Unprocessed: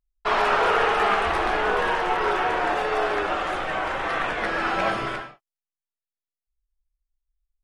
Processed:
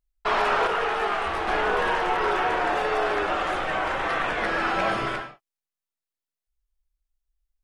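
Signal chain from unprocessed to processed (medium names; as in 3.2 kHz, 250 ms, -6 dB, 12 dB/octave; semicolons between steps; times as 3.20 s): in parallel at +0.5 dB: peak limiter -17.5 dBFS, peak gain reduction 8.5 dB; 0.67–1.48 s: on the sum: detune thickener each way 11 cents; trim -5.5 dB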